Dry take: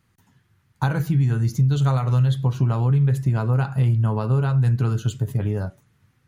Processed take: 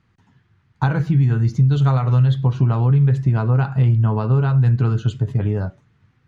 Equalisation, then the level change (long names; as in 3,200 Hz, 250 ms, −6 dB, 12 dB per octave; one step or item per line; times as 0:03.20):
high-frequency loss of the air 140 metres
notch filter 550 Hz, Q 17
+3.5 dB